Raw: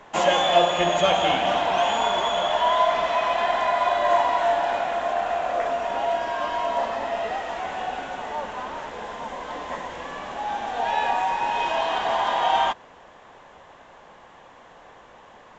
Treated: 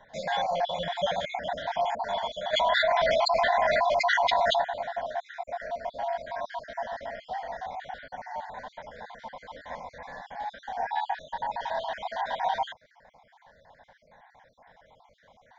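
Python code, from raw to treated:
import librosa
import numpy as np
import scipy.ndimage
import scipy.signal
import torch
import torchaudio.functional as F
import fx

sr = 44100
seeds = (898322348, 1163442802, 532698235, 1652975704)

y = fx.spec_dropout(x, sr, seeds[0], share_pct=48)
y = fx.fixed_phaser(y, sr, hz=1800.0, stages=8)
y = fx.env_flatten(y, sr, amount_pct=100, at=(2.52, 4.61), fade=0.02)
y = F.gain(torch.from_numpy(y), -4.0).numpy()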